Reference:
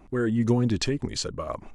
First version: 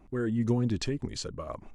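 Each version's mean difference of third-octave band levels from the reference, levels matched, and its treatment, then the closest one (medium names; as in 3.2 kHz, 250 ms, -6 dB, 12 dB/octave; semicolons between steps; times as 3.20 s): 1.0 dB: bass shelf 380 Hz +3.5 dB; trim -7 dB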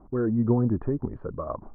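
5.5 dB: steep low-pass 1.3 kHz 36 dB/octave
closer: first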